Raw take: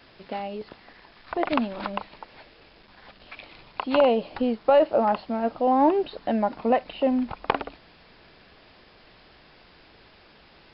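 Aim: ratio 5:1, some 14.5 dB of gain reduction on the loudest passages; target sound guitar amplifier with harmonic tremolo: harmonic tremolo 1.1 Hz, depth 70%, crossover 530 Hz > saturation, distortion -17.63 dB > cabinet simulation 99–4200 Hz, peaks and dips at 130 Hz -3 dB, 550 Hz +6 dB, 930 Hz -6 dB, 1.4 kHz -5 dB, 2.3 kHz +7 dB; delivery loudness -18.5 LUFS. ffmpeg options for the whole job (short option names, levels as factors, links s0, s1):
-filter_complex "[0:a]acompressor=threshold=0.0282:ratio=5,acrossover=split=530[s0][s1];[s0]aeval=exprs='val(0)*(1-0.7/2+0.7/2*cos(2*PI*1.1*n/s))':c=same[s2];[s1]aeval=exprs='val(0)*(1-0.7/2-0.7/2*cos(2*PI*1.1*n/s))':c=same[s3];[s2][s3]amix=inputs=2:normalize=0,asoftclip=threshold=0.0376,highpass=99,equalizer=f=130:t=q:w=4:g=-3,equalizer=f=550:t=q:w=4:g=6,equalizer=f=930:t=q:w=4:g=-6,equalizer=f=1400:t=q:w=4:g=-5,equalizer=f=2300:t=q:w=4:g=7,lowpass=f=4200:w=0.5412,lowpass=f=4200:w=1.3066,volume=10.6"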